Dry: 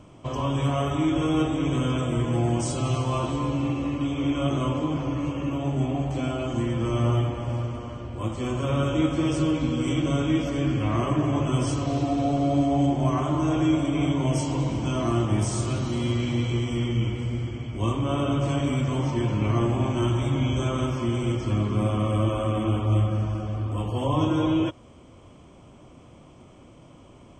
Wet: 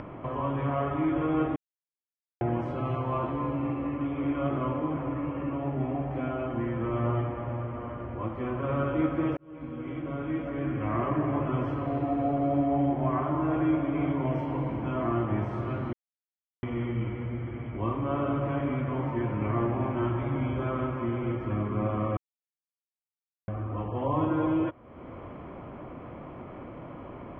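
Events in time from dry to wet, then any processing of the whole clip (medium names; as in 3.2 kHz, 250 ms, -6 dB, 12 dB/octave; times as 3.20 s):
1.56–2.41 s: mute
9.37–10.97 s: fade in
15.93–16.63 s: mute
22.17–23.48 s: mute
whole clip: Chebyshev low-pass 1.9 kHz, order 3; bass shelf 260 Hz -8 dB; upward compressor, threshold -30 dBFS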